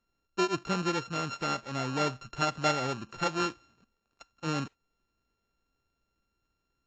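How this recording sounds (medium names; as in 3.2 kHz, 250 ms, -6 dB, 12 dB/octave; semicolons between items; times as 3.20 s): a buzz of ramps at a fixed pitch in blocks of 32 samples; AAC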